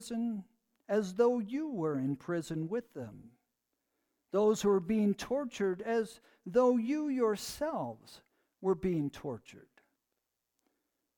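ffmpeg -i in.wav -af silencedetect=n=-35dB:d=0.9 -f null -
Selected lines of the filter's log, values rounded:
silence_start: 3.04
silence_end: 4.34 | silence_duration: 1.30
silence_start: 9.34
silence_end: 11.17 | silence_duration: 1.83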